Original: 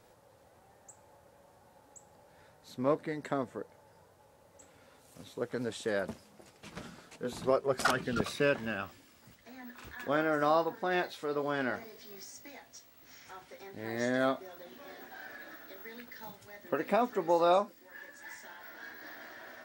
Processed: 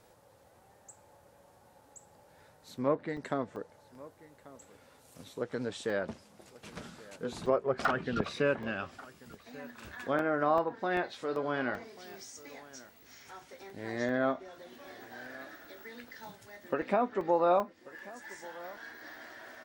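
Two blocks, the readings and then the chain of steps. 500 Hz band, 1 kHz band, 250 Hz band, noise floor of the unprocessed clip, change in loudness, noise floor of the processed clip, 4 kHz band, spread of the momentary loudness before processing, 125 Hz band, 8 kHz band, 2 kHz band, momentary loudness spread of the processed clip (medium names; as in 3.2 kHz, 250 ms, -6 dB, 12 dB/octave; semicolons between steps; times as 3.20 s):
0.0 dB, 0.0 dB, 0.0 dB, -62 dBFS, -0.5 dB, -62 dBFS, -3.5 dB, 20 LU, 0.0 dB, -3.5 dB, -0.5 dB, 21 LU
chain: low-pass that closes with the level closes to 2.1 kHz, closed at -25.5 dBFS; treble shelf 9.2 kHz +3.5 dB; on a send: delay 1137 ms -20 dB; on the sum: crackling interface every 0.39 s, samples 64, zero, from 0.44 s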